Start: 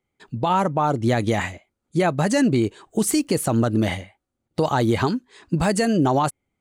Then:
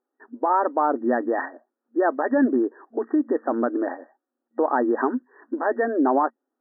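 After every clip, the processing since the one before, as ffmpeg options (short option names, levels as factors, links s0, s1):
-af "afftfilt=real='re*between(b*sr/4096,230,1900)':imag='im*between(b*sr/4096,230,1900)':win_size=4096:overlap=0.75"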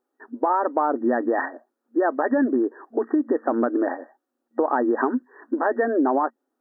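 -af "acompressor=threshold=0.0891:ratio=6,volume=1.58"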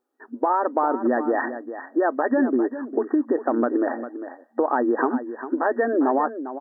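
-af "aecho=1:1:401:0.266"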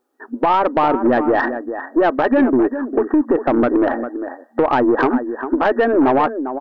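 -af "aeval=exprs='(tanh(6.31*val(0)+0.15)-tanh(0.15))/6.31':c=same,volume=2.66"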